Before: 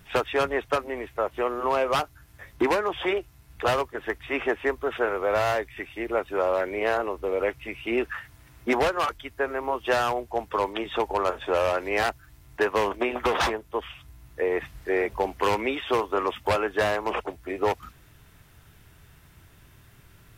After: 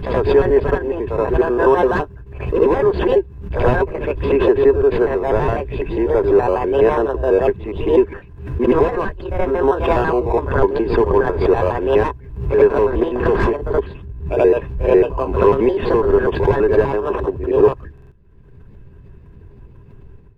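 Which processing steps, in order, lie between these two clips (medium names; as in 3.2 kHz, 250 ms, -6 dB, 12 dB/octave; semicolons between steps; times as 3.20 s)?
pitch shift switched off and on +5 st, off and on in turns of 83 ms; in parallel at -6 dB: decimation with a swept rate 27×, swing 60% 0.39 Hz; on the sum: small resonant body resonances 400/1000/1600/2600 Hz, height 12 dB, ringing for 35 ms; gate -43 dBFS, range -16 dB; tilt EQ -3.5 dB/octave; level rider gain up to 14.5 dB; treble shelf 2.8 kHz -7.5 dB; pre-echo 76 ms -19 dB; buffer glitch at 17.93 s, samples 2048, times 3; swell ahead of each attack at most 73 dB/s; trim -2 dB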